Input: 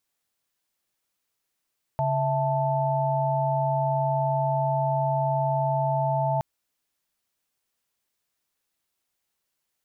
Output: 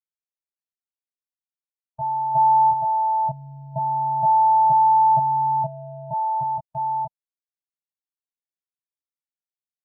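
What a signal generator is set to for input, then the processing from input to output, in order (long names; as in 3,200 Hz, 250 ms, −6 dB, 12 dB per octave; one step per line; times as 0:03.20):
held notes C#3/E5/A5 sine, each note −26 dBFS 4.42 s
delay that plays each chunk backwards 470 ms, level 0 dB
double-tracking delay 25 ms −2.5 dB
every bin expanded away from the loudest bin 1.5 to 1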